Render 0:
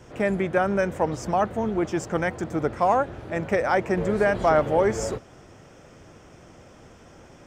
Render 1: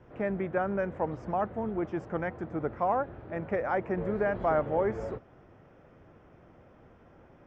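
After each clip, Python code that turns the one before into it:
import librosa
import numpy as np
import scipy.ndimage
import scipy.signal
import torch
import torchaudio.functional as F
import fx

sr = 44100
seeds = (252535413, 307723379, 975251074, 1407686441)

y = scipy.signal.sosfilt(scipy.signal.butter(2, 1900.0, 'lowpass', fs=sr, output='sos'), x)
y = y * 10.0 ** (-7.0 / 20.0)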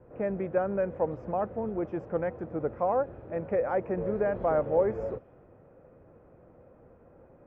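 y = fx.high_shelf(x, sr, hz=2100.0, db=-11.0)
y = fx.small_body(y, sr, hz=(510.0, 2500.0), ring_ms=25, db=8)
y = fx.env_lowpass(y, sr, base_hz=1700.0, full_db=-26.5)
y = y * 10.0 ** (-1.0 / 20.0)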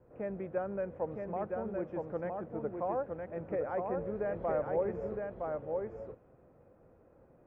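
y = x + 10.0 ** (-3.5 / 20.0) * np.pad(x, (int(964 * sr / 1000.0), 0))[:len(x)]
y = y * 10.0 ** (-7.5 / 20.0)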